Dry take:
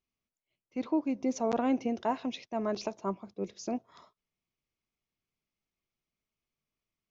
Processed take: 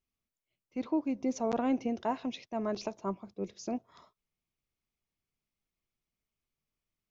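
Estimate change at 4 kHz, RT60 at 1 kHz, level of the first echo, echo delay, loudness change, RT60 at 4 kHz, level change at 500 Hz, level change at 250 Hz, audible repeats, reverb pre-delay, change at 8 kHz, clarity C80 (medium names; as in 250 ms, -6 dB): -2.0 dB, no reverb, no echo, no echo, -1.5 dB, no reverb, -1.5 dB, -1.0 dB, no echo, no reverb, no reading, no reverb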